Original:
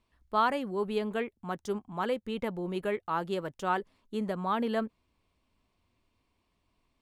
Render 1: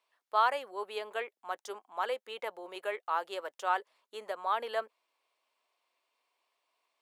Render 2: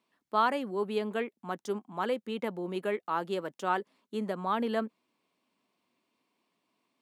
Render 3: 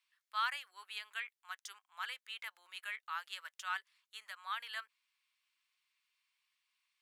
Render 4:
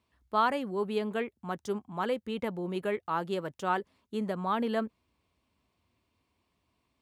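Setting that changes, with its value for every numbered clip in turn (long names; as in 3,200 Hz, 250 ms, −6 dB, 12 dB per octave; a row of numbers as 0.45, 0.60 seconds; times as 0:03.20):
high-pass filter, corner frequency: 520, 190, 1,500, 55 Hertz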